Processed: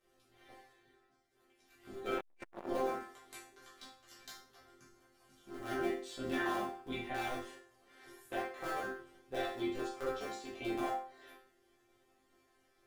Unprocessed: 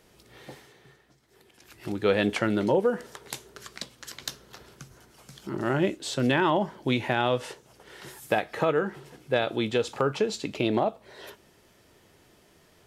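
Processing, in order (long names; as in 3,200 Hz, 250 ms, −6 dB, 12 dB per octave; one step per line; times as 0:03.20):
sub-harmonics by changed cycles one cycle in 3, muted
resonators tuned to a chord C4 sus4, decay 0.4 s
convolution reverb RT60 0.35 s, pre-delay 7 ms, DRR −4 dB
0:02.18–0:02.69: saturating transformer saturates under 860 Hz
level +3 dB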